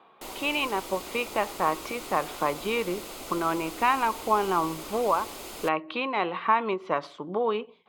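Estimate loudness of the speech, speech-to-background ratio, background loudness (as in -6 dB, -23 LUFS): -28.0 LUFS, 11.0 dB, -39.0 LUFS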